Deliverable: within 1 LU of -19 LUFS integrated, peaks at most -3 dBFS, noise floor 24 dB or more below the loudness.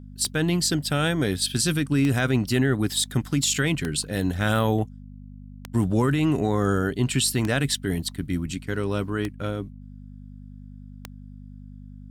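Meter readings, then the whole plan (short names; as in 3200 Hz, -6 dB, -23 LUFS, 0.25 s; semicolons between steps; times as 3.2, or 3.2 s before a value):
clicks 7; hum 50 Hz; harmonics up to 250 Hz; hum level -41 dBFS; loudness -24.0 LUFS; peak -9.0 dBFS; loudness target -19.0 LUFS
-> de-click; de-hum 50 Hz, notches 5; gain +5 dB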